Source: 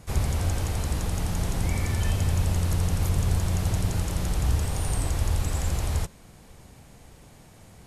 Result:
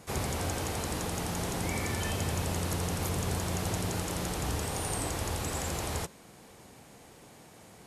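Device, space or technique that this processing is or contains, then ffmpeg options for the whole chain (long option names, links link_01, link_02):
filter by subtraction: -filter_complex "[0:a]equalizer=frequency=600:width_type=o:width=0.38:gain=-2,asplit=2[link_01][link_02];[link_02]lowpass=400,volume=-1[link_03];[link_01][link_03]amix=inputs=2:normalize=0"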